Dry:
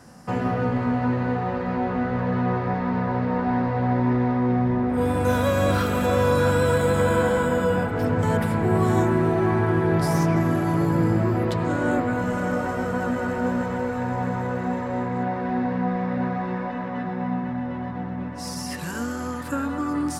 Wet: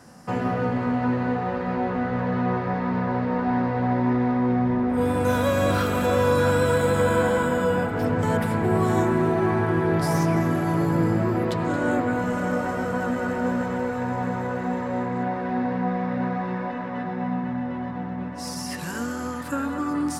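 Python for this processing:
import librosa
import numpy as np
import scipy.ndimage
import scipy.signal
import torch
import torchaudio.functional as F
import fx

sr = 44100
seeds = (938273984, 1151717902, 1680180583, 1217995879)

p1 = fx.low_shelf(x, sr, hz=88.0, db=-6.0)
y = p1 + fx.echo_single(p1, sr, ms=223, db=-16.0, dry=0)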